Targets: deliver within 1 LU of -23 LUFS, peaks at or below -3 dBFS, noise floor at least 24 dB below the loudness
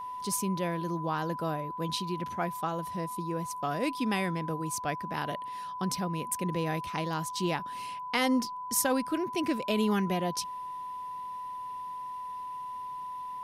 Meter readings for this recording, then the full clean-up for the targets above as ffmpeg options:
steady tone 1 kHz; tone level -36 dBFS; loudness -32.5 LUFS; peak level -13.0 dBFS; loudness target -23.0 LUFS
-> -af "bandreject=f=1000:w=30"
-af "volume=2.99"

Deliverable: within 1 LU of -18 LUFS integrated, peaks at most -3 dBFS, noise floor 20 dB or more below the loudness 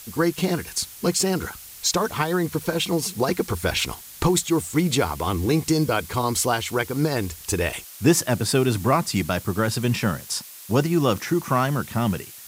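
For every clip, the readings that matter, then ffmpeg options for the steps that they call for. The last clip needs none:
noise floor -42 dBFS; noise floor target -43 dBFS; loudness -23.0 LUFS; peak level -5.5 dBFS; loudness target -18.0 LUFS
-> -af "afftdn=nr=6:nf=-42"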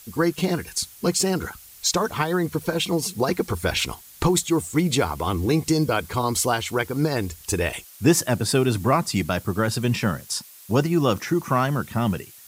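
noise floor -47 dBFS; loudness -23.5 LUFS; peak level -5.5 dBFS; loudness target -18.0 LUFS
-> -af "volume=1.88,alimiter=limit=0.708:level=0:latency=1"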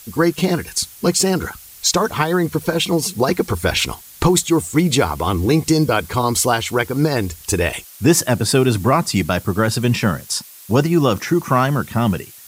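loudness -18.0 LUFS; peak level -3.0 dBFS; noise floor -41 dBFS

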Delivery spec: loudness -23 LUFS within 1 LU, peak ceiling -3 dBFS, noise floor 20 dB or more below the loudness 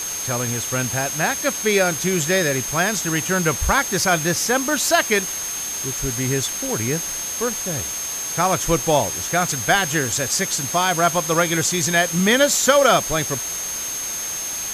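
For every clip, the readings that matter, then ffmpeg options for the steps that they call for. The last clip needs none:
steady tone 6.4 kHz; tone level -26 dBFS; noise floor -27 dBFS; noise floor target -40 dBFS; loudness -19.5 LUFS; peak level -1.0 dBFS; loudness target -23.0 LUFS
-> -af "bandreject=f=6400:w=30"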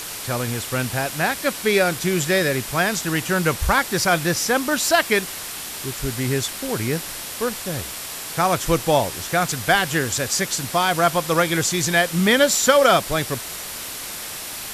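steady tone not found; noise floor -32 dBFS; noise floor target -41 dBFS
-> -af "afftdn=nr=9:nf=-32"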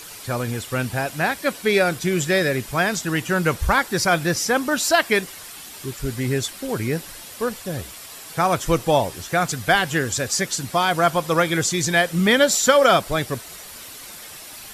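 noise floor -39 dBFS; noise floor target -41 dBFS
-> -af "afftdn=nr=6:nf=-39"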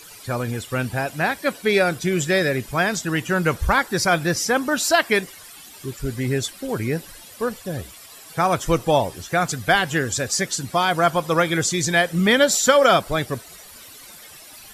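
noise floor -43 dBFS; loudness -21.0 LUFS; peak level -1.5 dBFS; loudness target -23.0 LUFS
-> -af "volume=0.794"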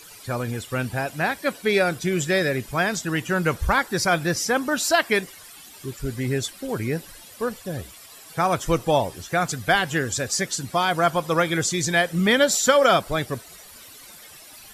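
loudness -23.0 LUFS; peak level -3.5 dBFS; noise floor -45 dBFS

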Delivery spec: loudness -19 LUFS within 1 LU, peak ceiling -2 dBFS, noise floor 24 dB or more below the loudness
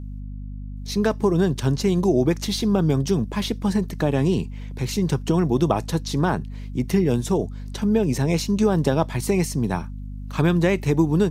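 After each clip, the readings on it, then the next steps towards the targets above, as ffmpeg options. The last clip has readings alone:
hum 50 Hz; highest harmonic 250 Hz; hum level -30 dBFS; loudness -22.5 LUFS; peak level -4.0 dBFS; loudness target -19.0 LUFS
-> -af "bandreject=f=50:t=h:w=4,bandreject=f=100:t=h:w=4,bandreject=f=150:t=h:w=4,bandreject=f=200:t=h:w=4,bandreject=f=250:t=h:w=4"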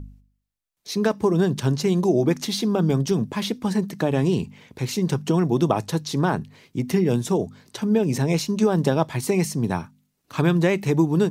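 hum not found; loudness -22.5 LUFS; peak level -4.5 dBFS; loudness target -19.0 LUFS
-> -af "volume=1.5,alimiter=limit=0.794:level=0:latency=1"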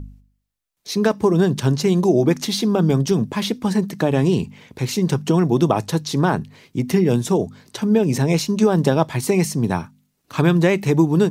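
loudness -19.0 LUFS; peak level -2.0 dBFS; noise floor -71 dBFS

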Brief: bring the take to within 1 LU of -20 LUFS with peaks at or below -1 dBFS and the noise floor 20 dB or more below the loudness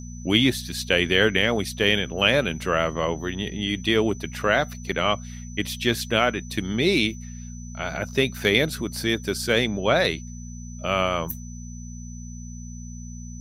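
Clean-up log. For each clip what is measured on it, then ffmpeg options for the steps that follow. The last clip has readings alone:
hum 60 Hz; highest harmonic 240 Hz; hum level -35 dBFS; steady tone 6 kHz; tone level -45 dBFS; loudness -23.0 LUFS; peak level -4.5 dBFS; loudness target -20.0 LUFS
-> -af "bandreject=f=60:t=h:w=4,bandreject=f=120:t=h:w=4,bandreject=f=180:t=h:w=4,bandreject=f=240:t=h:w=4"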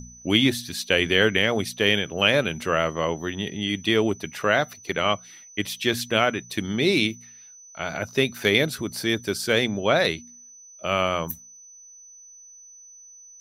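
hum not found; steady tone 6 kHz; tone level -45 dBFS
-> -af "bandreject=f=6000:w=30"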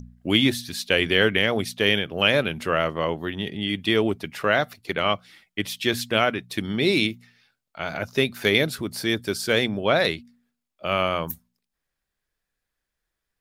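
steady tone not found; loudness -23.0 LUFS; peak level -4.5 dBFS; loudness target -20.0 LUFS
-> -af "volume=1.41"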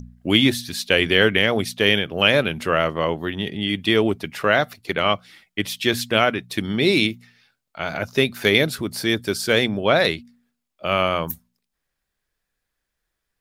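loudness -20.0 LUFS; peak level -2.0 dBFS; noise floor -80 dBFS

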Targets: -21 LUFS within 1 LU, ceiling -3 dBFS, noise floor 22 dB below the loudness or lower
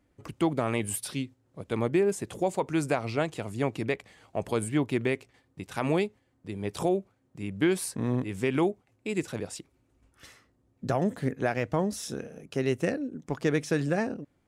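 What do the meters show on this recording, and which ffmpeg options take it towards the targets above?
loudness -30.0 LUFS; peak level -15.0 dBFS; loudness target -21.0 LUFS
-> -af "volume=2.82"

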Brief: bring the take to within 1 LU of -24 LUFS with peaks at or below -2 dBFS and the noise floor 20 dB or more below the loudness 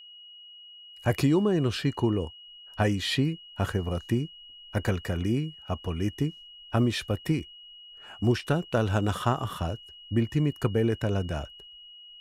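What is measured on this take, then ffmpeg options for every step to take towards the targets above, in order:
steady tone 2.9 kHz; tone level -46 dBFS; loudness -28.5 LUFS; peak level -9.5 dBFS; loudness target -24.0 LUFS
-> -af "bandreject=f=2900:w=30"
-af "volume=1.68"

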